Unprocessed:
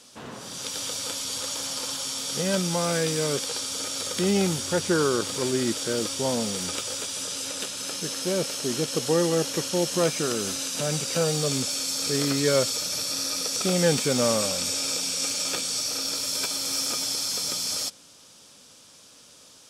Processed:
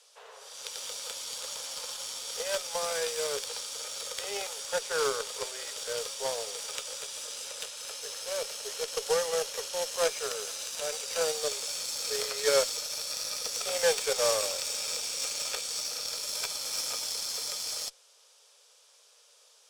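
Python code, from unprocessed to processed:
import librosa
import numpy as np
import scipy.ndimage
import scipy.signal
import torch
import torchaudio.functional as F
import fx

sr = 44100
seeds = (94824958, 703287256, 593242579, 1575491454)

y = scipy.signal.sosfilt(scipy.signal.cheby1(10, 1.0, 410.0, 'highpass', fs=sr, output='sos'), x)
y = fx.cheby_harmonics(y, sr, harmonics=(7, 8), levels_db=(-22, -35), full_scale_db=-10.0)
y = y * librosa.db_to_amplitude(-1.0)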